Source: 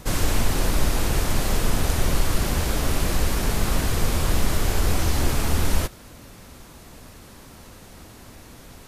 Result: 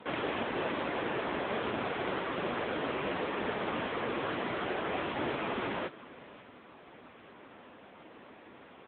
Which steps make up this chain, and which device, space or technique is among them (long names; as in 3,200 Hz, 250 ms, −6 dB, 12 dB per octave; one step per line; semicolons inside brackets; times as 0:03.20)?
satellite phone (band-pass filter 300–3,100 Hz; single-tap delay 547 ms −19 dB; AMR narrowband 6.7 kbit/s 8,000 Hz)